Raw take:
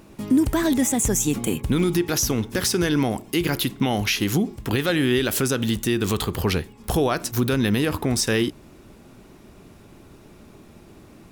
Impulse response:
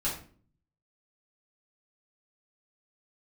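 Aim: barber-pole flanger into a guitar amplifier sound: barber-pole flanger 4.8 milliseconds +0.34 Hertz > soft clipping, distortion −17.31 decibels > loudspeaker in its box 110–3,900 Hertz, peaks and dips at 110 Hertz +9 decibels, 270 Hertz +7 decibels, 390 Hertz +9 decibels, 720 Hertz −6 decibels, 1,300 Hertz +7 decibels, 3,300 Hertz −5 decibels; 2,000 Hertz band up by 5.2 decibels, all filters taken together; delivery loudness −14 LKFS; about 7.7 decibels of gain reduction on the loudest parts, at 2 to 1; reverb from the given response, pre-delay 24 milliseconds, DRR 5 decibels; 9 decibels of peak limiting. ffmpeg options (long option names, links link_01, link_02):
-filter_complex "[0:a]equalizer=frequency=2000:width_type=o:gain=5.5,acompressor=threshold=-30dB:ratio=2,alimiter=limit=-21dB:level=0:latency=1,asplit=2[link_01][link_02];[1:a]atrim=start_sample=2205,adelay=24[link_03];[link_02][link_03]afir=irnorm=-1:irlink=0,volume=-11dB[link_04];[link_01][link_04]amix=inputs=2:normalize=0,asplit=2[link_05][link_06];[link_06]adelay=4.8,afreqshift=0.34[link_07];[link_05][link_07]amix=inputs=2:normalize=1,asoftclip=threshold=-24.5dB,highpass=110,equalizer=frequency=110:width_type=q:width=4:gain=9,equalizer=frequency=270:width_type=q:width=4:gain=7,equalizer=frequency=390:width_type=q:width=4:gain=9,equalizer=frequency=720:width_type=q:width=4:gain=-6,equalizer=frequency=1300:width_type=q:width=4:gain=7,equalizer=frequency=3300:width_type=q:width=4:gain=-5,lowpass=frequency=3900:width=0.5412,lowpass=frequency=3900:width=1.3066,volume=16dB"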